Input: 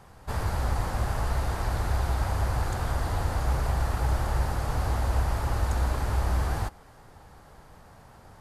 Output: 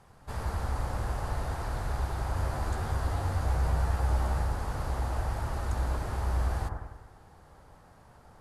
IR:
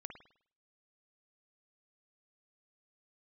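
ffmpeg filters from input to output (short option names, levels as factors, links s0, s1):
-filter_complex "[0:a]asettb=1/sr,asplit=3[s0][s1][s2];[s0]atrim=end=2.354[s3];[s1]atrim=start=2.35:end=4.43,asetpts=PTS-STARTPTS,afade=t=in:d=0.004:c=qsin,afade=t=out:st=2.076:d=0.004:c=qsin,asplit=2[s4][s5];[s5]adelay=13,volume=0.562[s6];[s4][s6]amix=inputs=2:normalize=0,atrim=end_sample=91728[s7];[s2]atrim=start=4.426[s8];[s3][s7]acrossfade=d=0.004:c1=hsin:c2=qsin[s9];[s9][s8]acrossfade=d=0.004:c1=qsin:c2=hsin[s10];[1:a]atrim=start_sample=2205,asetrate=22932,aresample=44100[s11];[s10][s11]afir=irnorm=-1:irlink=0,volume=0.631"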